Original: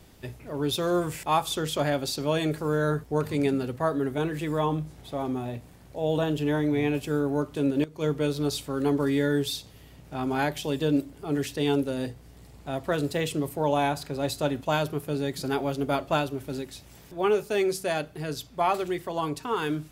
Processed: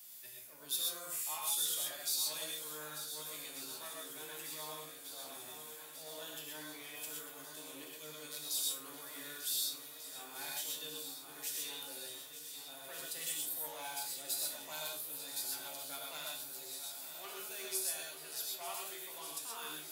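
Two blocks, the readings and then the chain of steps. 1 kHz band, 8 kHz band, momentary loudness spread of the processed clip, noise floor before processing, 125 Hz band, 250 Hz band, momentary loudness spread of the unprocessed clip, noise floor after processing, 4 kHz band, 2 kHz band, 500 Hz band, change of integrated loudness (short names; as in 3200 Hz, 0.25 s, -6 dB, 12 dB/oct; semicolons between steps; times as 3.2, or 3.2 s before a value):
-19.5 dB, +3.0 dB, 12 LU, -51 dBFS, -34.0 dB, -30.0 dB, 9 LU, -51 dBFS, -4.5 dB, -13.5 dB, -25.0 dB, -12.0 dB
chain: soft clip -19 dBFS, distortion -16 dB; differentiator; notch 420 Hz, Q 12; swung echo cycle 1.492 s, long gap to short 1.5:1, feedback 65%, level -12 dB; reverse; upward compressor, threshold -46 dBFS; reverse; high shelf 11000 Hz +8.5 dB; resonator 77 Hz, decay 0.29 s, harmonics all, mix 80%; non-linear reverb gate 0.15 s rising, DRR -1 dB; gain +2.5 dB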